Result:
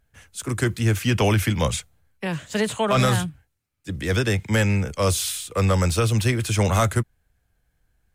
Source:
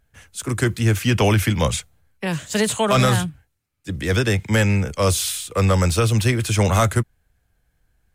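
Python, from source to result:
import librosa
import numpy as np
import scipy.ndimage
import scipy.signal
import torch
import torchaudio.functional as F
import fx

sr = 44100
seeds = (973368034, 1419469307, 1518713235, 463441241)

y = fx.bass_treble(x, sr, bass_db=-1, treble_db=-7, at=(2.27, 2.97))
y = y * librosa.db_to_amplitude(-2.5)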